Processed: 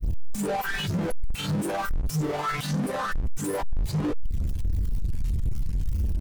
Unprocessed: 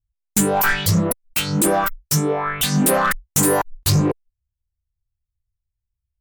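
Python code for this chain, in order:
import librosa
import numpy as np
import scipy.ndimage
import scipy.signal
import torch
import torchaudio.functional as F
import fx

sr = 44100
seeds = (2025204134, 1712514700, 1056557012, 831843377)

y = np.sign(x) * np.sqrt(np.mean(np.square(x)))
y = fx.granulator(y, sr, seeds[0], grain_ms=100.0, per_s=20.0, spray_ms=19.0, spread_st=0)
y = fx.spectral_expand(y, sr, expansion=1.5)
y = F.gain(torch.from_numpy(y), 2.5).numpy()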